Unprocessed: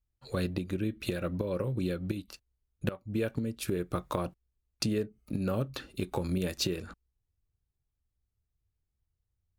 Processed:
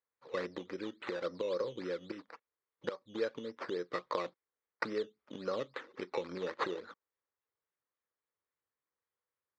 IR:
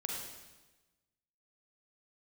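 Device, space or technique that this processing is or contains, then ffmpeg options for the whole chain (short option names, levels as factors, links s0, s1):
circuit-bent sampling toy: -af "acrusher=samples=11:mix=1:aa=0.000001:lfo=1:lforange=6.6:lforate=3.6,highpass=420,equalizer=f=490:t=q:w=4:g=7,equalizer=f=700:t=q:w=4:g=-6,equalizer=f=1100:t=q:w=4:g=4,equalizer=f=1900:t=q:w=4:g=3,equalizer=f=2800:t=q:w=4:g=-8,lowpass=f=4500:w=0.5412,lowpass=f=4500:w=1.3066,volume=0.75"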